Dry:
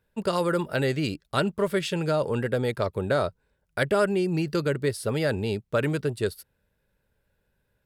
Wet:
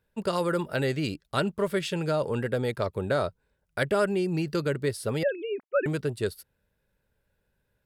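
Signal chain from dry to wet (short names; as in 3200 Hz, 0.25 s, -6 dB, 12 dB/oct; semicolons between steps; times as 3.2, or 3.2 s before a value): 5.23–5.86 sine-wave speech; gain -2 dB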